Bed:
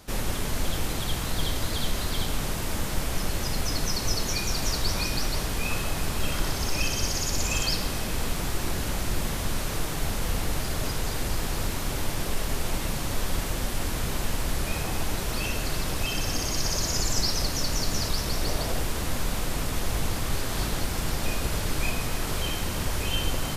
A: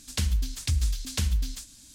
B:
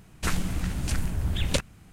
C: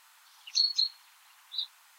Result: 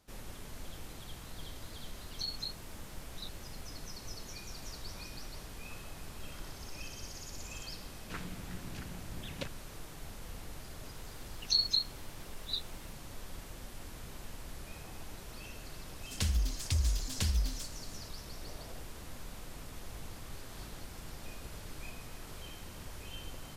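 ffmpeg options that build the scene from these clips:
ffmpeg -i bed.wav -i cue0.wav -i cue1.wav -i cue2.wav -filter_complex "[3:a]asplit=2[link_01][link_02];[0:a]volume=-18dB[link_03];[2:a]highpass=120,lowpass=4300[link_04];[link_01]atrim=end=1.98,asetpts=PTS-STARTPTS,volume=-13dB,afade=type=in:duration=0.004:curve=hsin,afade=type=out:start_time=1.976:duration=0.004:curve=hsin,adelay=1640[link_05];[link_04]atrim=end=1.92,asetpts=PTS-STARTPTS,volume=-13dB,afade=type=in:duration=0.004:curve=hsin,afade=type=out:start_time=1.916:duration=0.004:curve=hsin,adelay=7870[link_06];[link_02]atrim=end=1.98,asetpts=PTS-STARTPTS,volume=-2.5dB,afade=type=in:duration=0.004:curve=hsin,afade=type=out:start_time=1.976:duration=0.004:curve=hsin,adelay=10950[link_07];[1:a]atrim=end=1.94,asetpts=PTS-STARTPTS,volume=-5dB,afade=type=in:duration=0.004:curve=hsin,afade=type=out:start_time=1.936:duration=0.004:curve=hsin,adelay=16030[link_08];[link_03][link_05][link_06][link_07][link_08]amix=inputs=5:normalize=0" out.wav

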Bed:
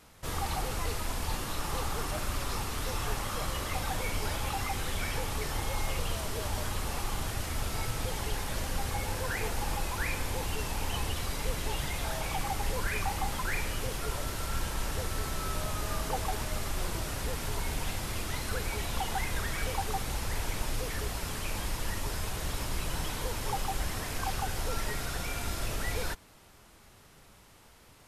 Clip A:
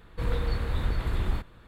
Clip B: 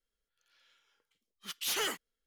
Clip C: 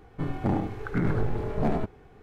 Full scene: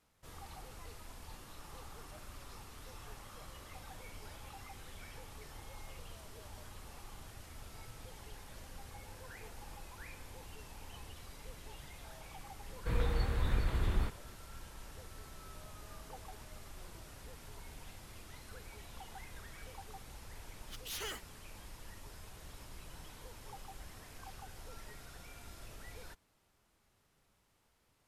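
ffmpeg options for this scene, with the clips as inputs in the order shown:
ffmpeg -i bed.wav -i cue0.wav -i cue1.wav -filter_complex "[0:a]volume=-17.5dB[link_01];[2:a]aeval=exprs='if(lt(val(0),0),0.708*val(0),val(0))':channel_layout=same[link_02];[1:a]atrim=end=1.67,asetpts=PTS-STARTPTS,volume=-4.5dB,afade=type=in:duration=0.004:curve=hsin,afade=type=out:start_time=1.666:duration=0.004:curve=hsin,adelay=559188S[link_03];[link_02]atrim=end=2.26,asetpts=PTS-STARTPTS,volume=-8dB,afade=type=in:duration=0.004:curve=hsin,afade=type=out:start_time=2.256:duration=0.004:curve=hsin,adelay=848484S[link_04];[link_01][link_03][link_04]amix=inputs=3:normalize=0" out.wav

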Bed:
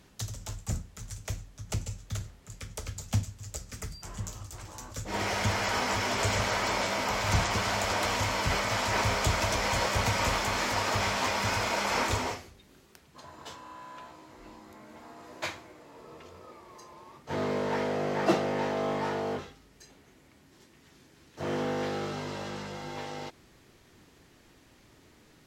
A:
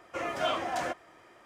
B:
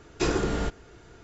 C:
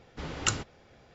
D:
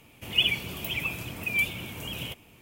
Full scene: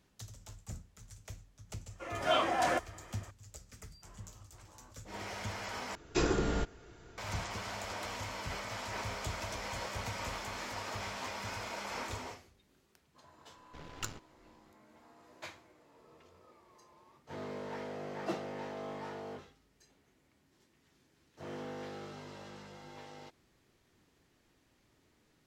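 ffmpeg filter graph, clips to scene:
ffmpeg -i bed.wav -i cue0.wav -i cue1.wav -i cue2.wav -filter_complex "[0:a]volume=-12dB[link_01];[1:a]dynaudnorm=framelen=240:gausssize=3:maxgain=15dB[link_02];[3:a]aeval=exprs='if(lt(val(0),0),0.251*val(0),val(0))':channel_layout=same[link_03];[link_01]asplit=2[link_04][link_05];[link_04]atrim=end=5.954[link_06];[2:a]atrim=end=1.23,asetpts=PTS-STARTPTS,volume=-4.5dB[link_07];[link_05]atrim=start=7.176[link_08];[link_02]atrim=end=1.45,asetpts=PTS-STARTPTS,volume=-12dB,afade=type=in:duration=0.004:curve=hsin,afade=type=out:start_time=1.446:duration=0.004:curve=hsin,adelay=1860[link_09];[link_03]atrim=end=1.14,asetpts=PTS-STARTPTS,volume=-9.5dB,afade=type=in:duration=0.004:curve=hsin,afade=type=out:start_time=1.136:duration=0.004:curve=hsin,adelay=13560[link_10];[link_06][link_07]acrossfade=duration=0.004:curve1=hsin:curve2=hsin[link_11];[link_11][link_08]acrossfade=duration=0.004:curve1=hsin:curve2=hsin[link_12];[link_12][link_09][link_10]amix=inputs=3:normalize=0" out.wav

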